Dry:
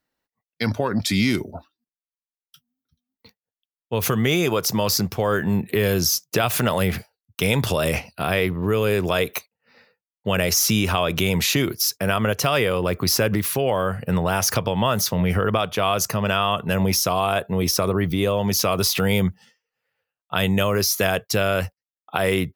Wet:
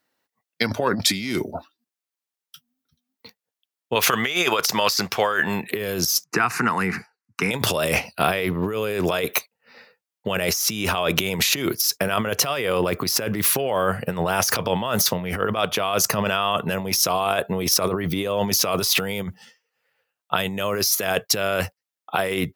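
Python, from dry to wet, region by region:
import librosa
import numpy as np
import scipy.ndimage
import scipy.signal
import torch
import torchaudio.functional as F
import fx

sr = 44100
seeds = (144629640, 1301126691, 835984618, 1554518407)

y = fx.chain(x, sr, fx.lowpass(hz=2600.0, slope=6),
    fx.tilt_shelf(db=-10.0, hz=700.0), at=(3.95, 5.71))
y = fx.chain(y, sr, fx.bandpass_edges(low_hz=180.0, high_hz=5000.0),
    fx.fixed_phaser(hz=1400.0, stages=4),
    fx.band_squash(depth_pct=40), at=(6.24, 7.51))
y = fx.over_compress(y, sr, threshold_db=-23.0, ratio=-0.5)
y = fx.highpass(y, sr, hz=250.0, slope=6)
y = y * librosa.db_to_amplitude(3.5)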